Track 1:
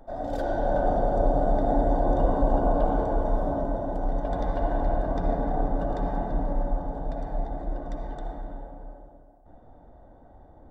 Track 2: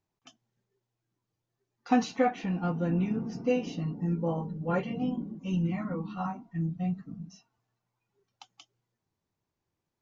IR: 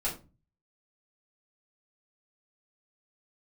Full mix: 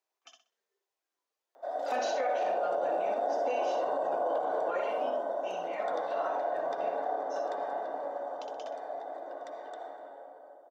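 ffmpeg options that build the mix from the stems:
-filter_complex "[0:a]adelay=1550,volume=0.944[s0];[1:a]volume=0.944,asplit=2[s1][s2];[s2]volume=0.531,aecho=0:1:63|126|189|252:1|0.28|0.0784|0.022[s3];[s0][s1][s3]amix=inputs=3:normalize=0,highpass=f=460:w=0.5412,highpass=f=460:w=1.3066,bandreject=f=860:w=19,alimiter=limit=0.075:level=0:latency=1:release=40"

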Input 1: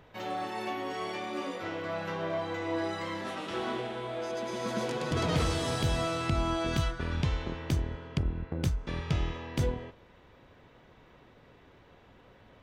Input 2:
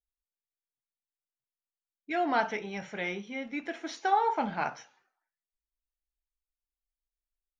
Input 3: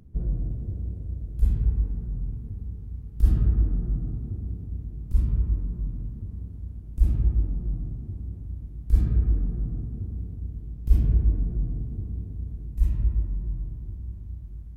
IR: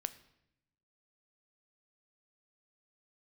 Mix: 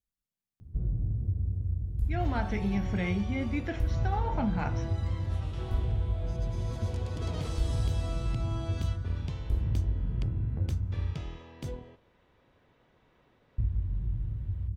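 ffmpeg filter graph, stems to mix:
-filter_complex "[0:a]adynamicequalizer=threshold=0.00282:dfrequency=1700:dqfactor=0.92:tfrequency=1700:tqfactor=0.92:attack=5:release=100:ratio=0.375:range=2.5:mode=cutabove:tftype=bell,adelay=2050,volume=0.376[s0];[1:a]equalizer=f=190:w=1.6:g=14,volume=0.944[s1];[2:a]adelay=600,volume=0.562,asplit=3[s2][s3][s4];[s2]atrim=end=11.14,asetpts=PTS-STARTPTS,afade=t=out:st=11.136:d=0.004:c=hsin[s5];[s3]atrim=start=11.14:end=13.58,asetpts=PTS-STARTPTS,volume=0[s6];[s4]atrim=start=13.58,asetpts=PTS-STARTPTS,afade=t=in:d=0.004:c=hsin[s7];[s5][s6][s7]concat=n=3:v=0:a=1[s8];[s1][s8]amix=inputs=2:normalize=0,equalizer=f=95:w=1.4:g=12,acompressor=threshold=0.0562:ratio=6,volume=1[s9];[s0][s9]amix=inputs=2:normalize=0"

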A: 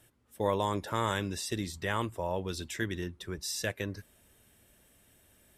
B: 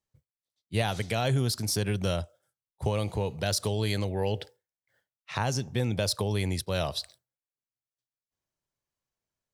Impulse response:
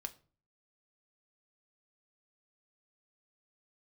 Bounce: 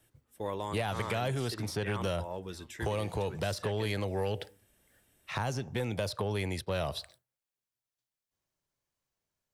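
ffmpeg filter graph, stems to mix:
-filter_complex "[0:a]volume=0.376,asplit=3[s0][s1][s2];[s1]volume=0.596[s3];[s2]volume=0.0841[s4];[1:a]volume=1.26[s5];[2:a]atrim=start_sample=2205[s6];[s3][s6]afir=irnorm=-1:irlink=0[s7];[s4]aecho=0:1:644:1[s8];[s0][s5][s7][s8]amix=inputs=4:normalize=0,acrossover=split=370|3200|7500[s9][s10][s11][s12];[s9]acompressor=threshold=0.02:ratio=4[s13];[s10]acompressor=threshold=0.0316:ratio=4[s14];[s11]acompressor=threshold=0.00224:ratio=4[s15];[s12]acompressor=threshold=0.00251:ratio=4[s16];[s13][s14][s15][s16]amix=inputs=4:normalize=0,asoftclip=type=tanh:threshold=0.0794"

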